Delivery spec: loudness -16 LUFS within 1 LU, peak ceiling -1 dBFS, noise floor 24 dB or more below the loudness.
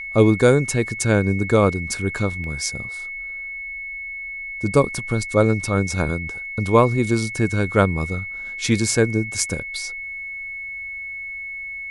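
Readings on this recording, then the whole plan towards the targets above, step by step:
dropouts 1; longest dropout 1.2 ms; steady tone 2.2 kHz; tone level -29 dBFS; loudness -21.5 LUFS; peak level -2.5 dBFS; loudness target -16.0 LUFS
-> interpolate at 2.44 s, 1.2 ms; band-stop 2.2 kHz, Q 30; trim +5.5 dB; peak limiter -1 dBFS

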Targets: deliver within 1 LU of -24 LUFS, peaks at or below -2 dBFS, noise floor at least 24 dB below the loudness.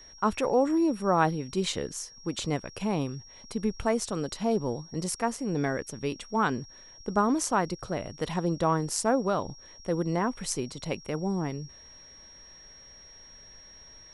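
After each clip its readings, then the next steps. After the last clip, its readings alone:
steady tone 5.6 kHz; tone level -49 dBFS; loudness -29.5 LUFS; peak level -10.5 dBFS; loudness target -24.0 LUFS
-> band-stop 5.6 kHz, Q 30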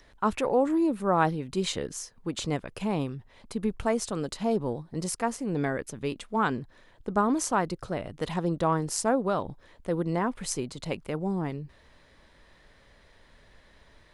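steady tone not found; loudness -29.5 LUFS; peak level -10.5 dBFS; loudness target -24.0 LUFS
-> trim +5.5 dB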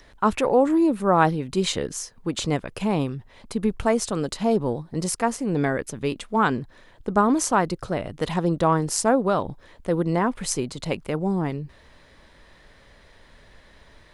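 loudness -24.0 LUFS; peak level -5.0 dBFS; noise floor -53 dBFS

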